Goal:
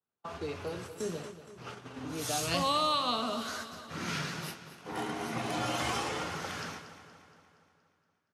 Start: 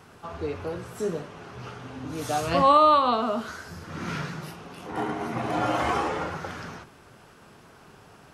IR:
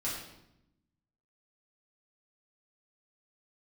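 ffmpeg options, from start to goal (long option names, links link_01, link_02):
-filter_complex "[0:a]highpass=frequency=140:poles=1,agate=range=-40dB:threshold=-40dB:ratio=16:detection=peak,acrossover=split=210|3000[link_01][link_02][link_03];[link_02]acompressor=threshold=-36dB:ratio=2[link_04];[link_01][link_04][link_03]amix=inputs=3:normalize=0,aecho=1:1:235|470|705|940|1175|1410|1645:0.237|0.14|0.0825|0.0487|0.0287|0.017|0.01,adynamicequalizer=threshold=0.00501:dfrequency=2000:dqfactor=0.7:tfrequency=2000:tqfactor=0.7:attack=5:release=100:ratio=0.375:range=3.5:mode=boostabove:tftype=highshelf,volume=-2.5dB"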